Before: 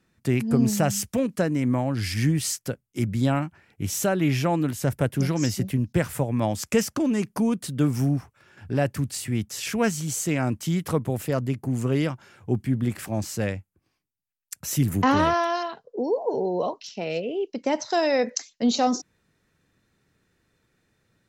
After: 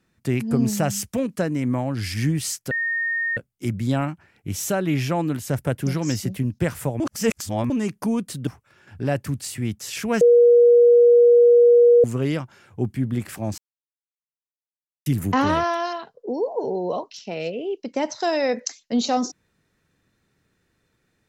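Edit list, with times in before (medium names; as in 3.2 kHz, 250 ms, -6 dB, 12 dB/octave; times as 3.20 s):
2.71 s: add tone 1.84 kHz -21 dBFS 0.66 s
6.34–7.04 s: reverse
7.81–8.17 s: delete
9.91–11.74 s: bleep 478 Hz -9.5 dBFS
13.28–14.76 s: mute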